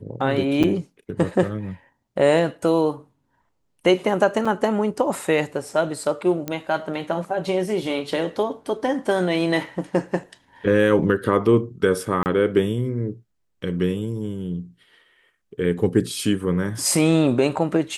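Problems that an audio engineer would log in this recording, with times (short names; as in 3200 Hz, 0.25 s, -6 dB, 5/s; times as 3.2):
0.63–0.64 gap 6.5 ms
4.45 gap 4.7 ms
6.48 pop -13 dBFS
12.23–12.26 gap 29 ms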